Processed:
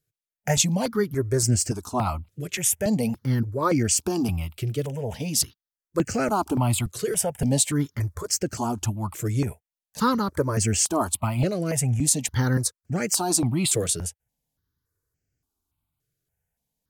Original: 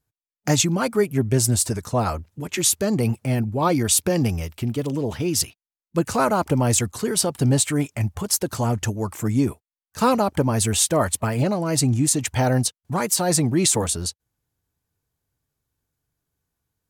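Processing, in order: step phaser 3.5 Hz 240–3700 Hz

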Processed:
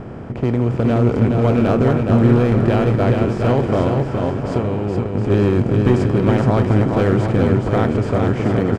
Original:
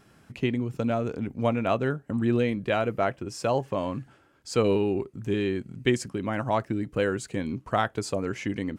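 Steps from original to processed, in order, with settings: per-bin compression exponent 0.4; AGC gain up to 8.5 dB; RIAA curve playback; 3.87–5.3 compressor 5:1, threshold -12 dBFS, peak gain reduction 8.5 dB; overloaded stage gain 3 dB; on a send: bouncing-ball echo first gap 0.42 s, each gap 0.7×, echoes 5; on the sum: mismatched tape noise reduction decoder only; gain -5.5 dB

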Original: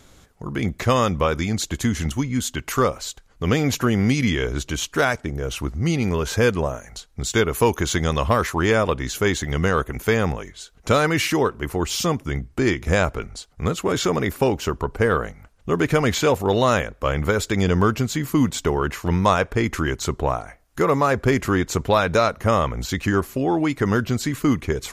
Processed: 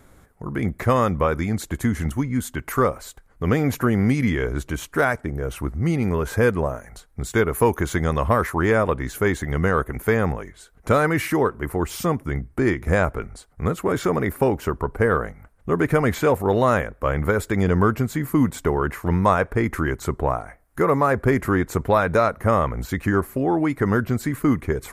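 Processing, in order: band shelf 4300 Hz -11 dB

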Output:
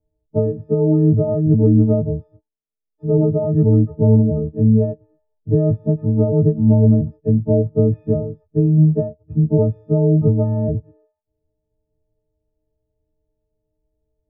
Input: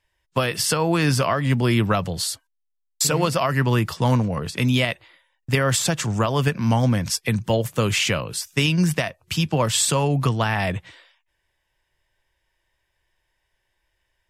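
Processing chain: frequency quantiser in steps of 6 st; Chebyshev low-pass 540 Hz, order 4; gain +7.5 dB

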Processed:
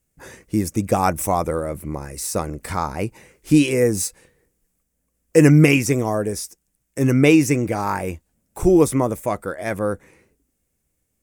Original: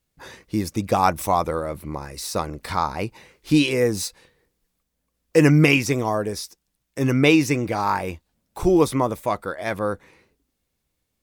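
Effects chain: graphic EQ 1000/4000/8000 Hz -6/-12/+6 dB; gain +3.5 dB

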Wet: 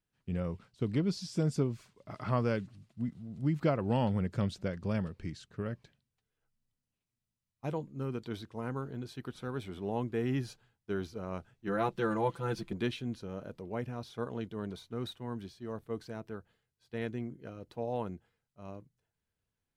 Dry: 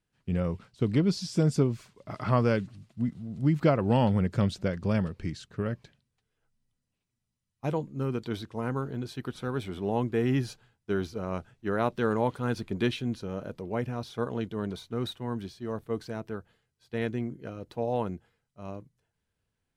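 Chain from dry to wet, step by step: 11.67–12.73 comb 5.9 ms, depth 90%; gain -6 dB

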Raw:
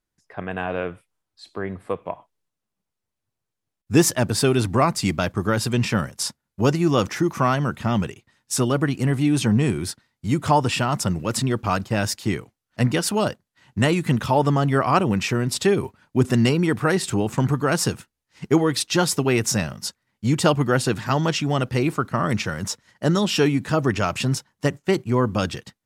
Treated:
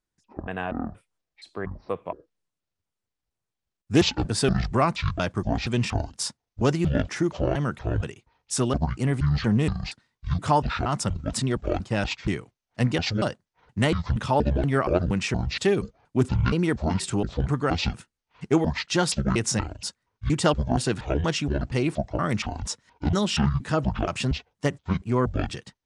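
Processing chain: trilling pitch shifter -12 st, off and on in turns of 0.236 s; downsampling 22050 Hz; Doppler distortion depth 0.14 ms; gain -3 dB

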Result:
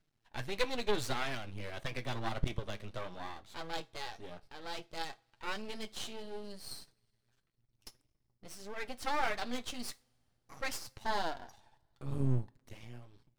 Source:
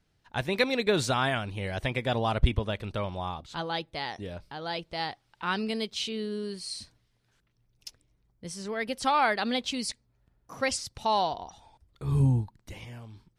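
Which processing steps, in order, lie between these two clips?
flange 1.6 Hz, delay 5.9 ms, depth 4 ms, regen +29%; half-wave rectifier; two-slope reverb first 0.28 s, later 2.3 s, from -28 dB, DRR 14 dB; gain -1.5 dB

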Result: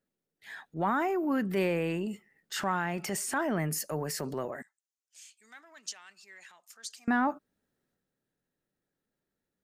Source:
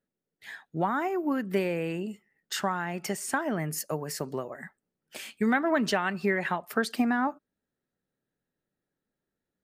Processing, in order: transient shaper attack -6 dB, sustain +5 dB; 4.62–7.08 band-pass 6700 Hz, Q 3.1

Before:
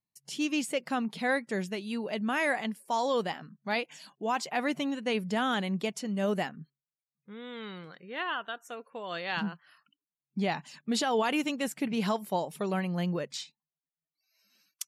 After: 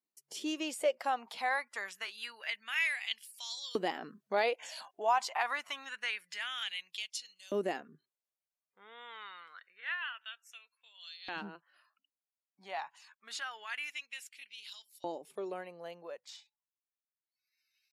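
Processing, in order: Doppler pass-by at 3.39, 10 m/s, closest 14 m; compressor 2.5:1, threshold -37 dBFS, peak gain reduction 8.5 dB; LFO high-pass saw up 0.32 Hz 300–4600 Hz; tempo 0.83×; gain +4.5 dB

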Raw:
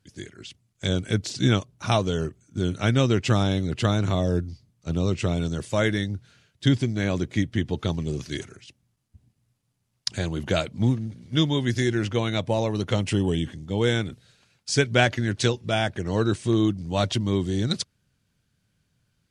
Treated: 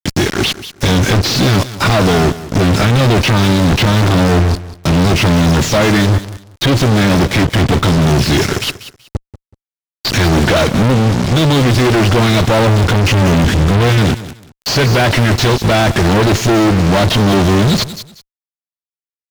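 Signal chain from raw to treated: nonlinear frequency compression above 3800 Hz 1.5:1; in parallel at +1 dB: compressor 12:1, threshold -35 dBFS, peak gain reduction 20.5 dB; 12.67–13.98 on the sum: low shelf 110 Hz +11 dB; sample leveller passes 1; high shelf 2800 Hz +2.5 dB; fuzz box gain 43 dB, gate -41 dBFS; on a send: feedback echo 0.188 s, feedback 23%, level -16 dB; on the sum: slew limiter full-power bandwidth 480 Hz; gain +4 dB

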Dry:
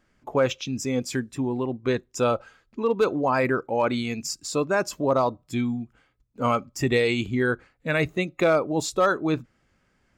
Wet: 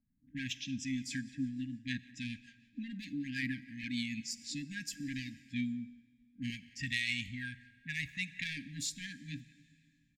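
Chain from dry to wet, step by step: soft clip -17 dBFS, distortion -16 dB; low shelf 230 Hz -9.5 dB; low-pass opened by the level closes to 380 Hz, open at -27 dBFS; FFT band-reject 300–1600 Hz; 6.5–8.57 bell 340 Hz -13.5 dB 1.3 oct; speakerphone echo 0.18 s, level -22 dB; plate-style reverb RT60 2.1 s, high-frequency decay 0.85×, DRR 15.5 dB; rotary speaker horn 6.7 Hz, later 0.65 Hz, at 3.84; gain -2.5 dB

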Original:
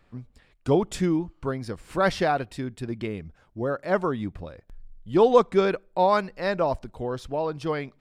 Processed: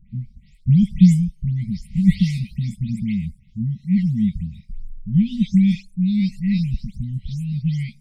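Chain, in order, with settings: spectral delay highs late, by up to 0.189 s; brick-wall FIR band-stop 220–1900 Hz; resonant low shelf 390 Hz +13 dB, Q 3

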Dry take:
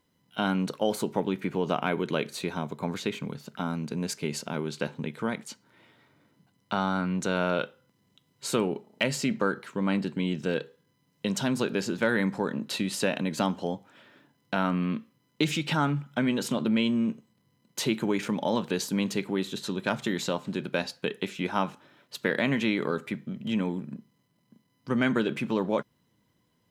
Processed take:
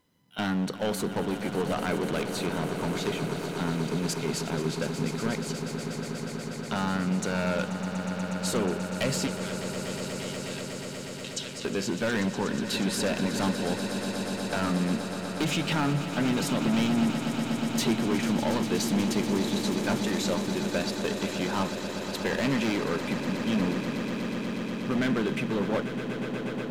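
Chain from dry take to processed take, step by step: hard clip -25 dBFS, distortion -9 dB; 9.27–11.65 Butterworth band-pass 4500 Hz, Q 0.83; swelling echo 0.121 s, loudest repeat 8, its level -13 dB; gain +1.5 dB

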